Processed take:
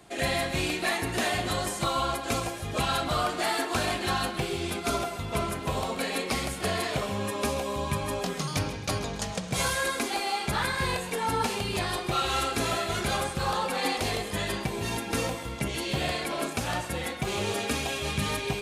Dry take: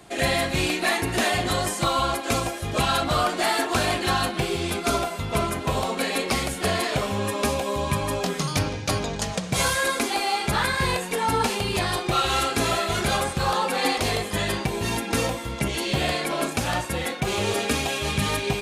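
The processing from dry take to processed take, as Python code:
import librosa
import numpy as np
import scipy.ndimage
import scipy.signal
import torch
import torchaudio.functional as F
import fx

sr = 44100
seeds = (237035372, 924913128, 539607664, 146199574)

p1 = fx.dmg_crackle(x, sr, seeds[0], per_s=230.0, level_db=-44.0, at=(5.59, 6.11), fade=0.02)
p2 = p1 + fx.echo_feedback(p1, sr, ms=133, feedback_pct=35, wet_db=-13.5, dry=0)
y = F.gain(torch.from_numpy(p2), -5.0).numpy()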